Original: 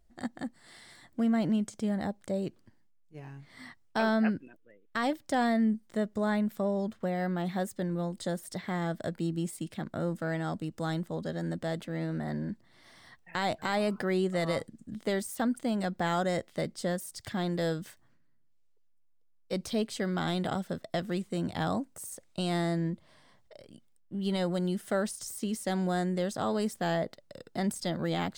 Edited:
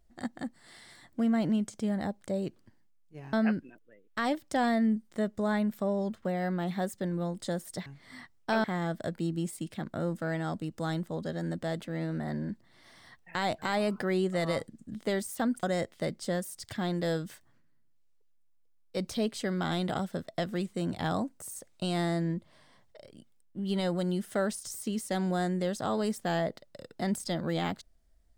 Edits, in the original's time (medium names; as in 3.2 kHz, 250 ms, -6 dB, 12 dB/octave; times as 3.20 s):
3.33–4.11 s: move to 8.64 s
15.63–16.19 s: delete